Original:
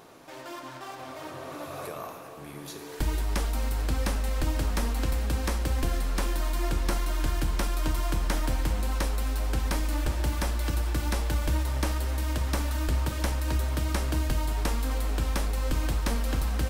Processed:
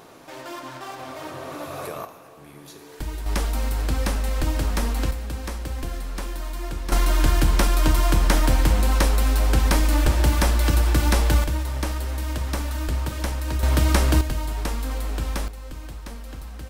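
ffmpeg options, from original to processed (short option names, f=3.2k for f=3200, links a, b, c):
-af "asetnsamples=n=441:p=0,asendcmd='2.05 volume volume -3dB;3.26 volume volume 4dB;5.11 volume volume -2.5dB;6.92 volume volume 9dB;11.44 volume volume 1.5dB;13.63 volume volume 9.5dB;14.21 volume volume 1dB;15.48 volume volume -9dB',volume=4.5dB"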